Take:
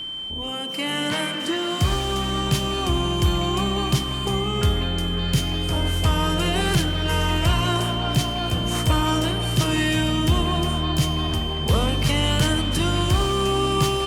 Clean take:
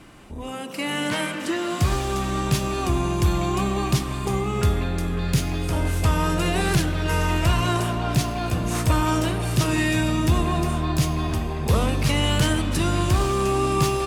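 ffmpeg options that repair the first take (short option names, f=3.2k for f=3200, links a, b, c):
-af "bandreject=f=3.1k:w=30"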